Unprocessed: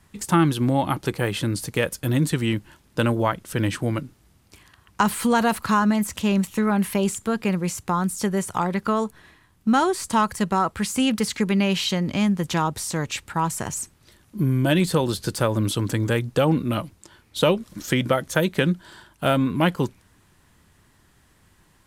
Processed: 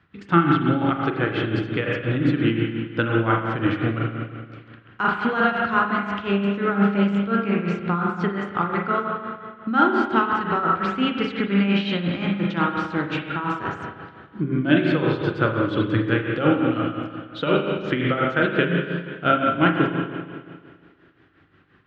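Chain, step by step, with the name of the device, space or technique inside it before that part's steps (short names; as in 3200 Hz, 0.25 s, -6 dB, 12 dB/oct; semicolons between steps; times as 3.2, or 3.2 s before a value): combo amplifier with spring reverb and tremolo (spring tank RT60 1.9 s, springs 35/40 ms, chirp 65 ms, DRR -2 dB; tremolo 5.7 Hz, depth 63%; speaker cabinet 94–3400 Hz, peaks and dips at 210 Hz -6 dB, 300 Hz +6 dB, 610 Hz -4 dB, 930 Hz -7 dB, 1400 Hz +8 dB)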